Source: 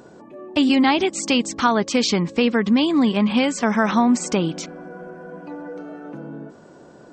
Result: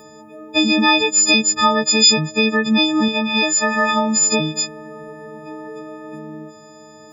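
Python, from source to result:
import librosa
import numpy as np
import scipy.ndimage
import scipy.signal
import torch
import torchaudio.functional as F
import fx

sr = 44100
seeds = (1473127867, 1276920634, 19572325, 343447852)

y = fx.freq_snap(x, sr, grid_st=6)
y = fx.low_shelf(y, sr, hz=230.0, db=-8.0, at=(3.08, 4.17))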